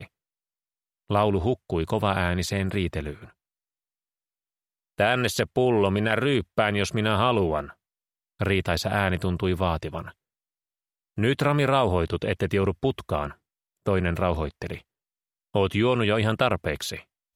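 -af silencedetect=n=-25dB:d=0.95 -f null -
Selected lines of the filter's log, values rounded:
silence_start: 0.00
silence_end: 1.11 | silence_duration: 1.11
silence_start: 3.11
silence_end: 5.00 | silence_duration: 1.89
silence_start: 10.00
silence_end: 11.18 | silence_duration: 1.18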